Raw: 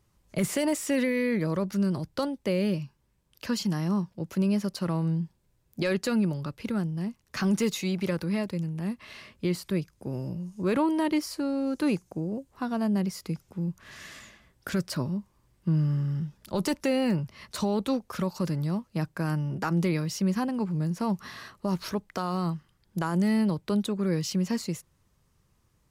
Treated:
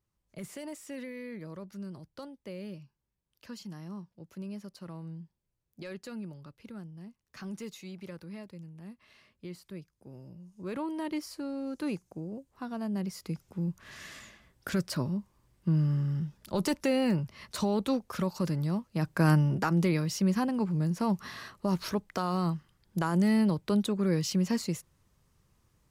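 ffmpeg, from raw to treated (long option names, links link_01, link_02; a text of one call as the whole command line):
ffmpeg -i in.wav -af "volume=6.5dB,afade=type=in:start_time=10.31:duration=0.94:silence=0.421697,afade=type=in:start_time=12.88:duration=0.71:silence=0.501187,afade=type=in:start_time=18.99:duration=0.3:silence=0.398107,afade=type=out:start_time=19.29:duration=0.41:silence=0.446684" out.wav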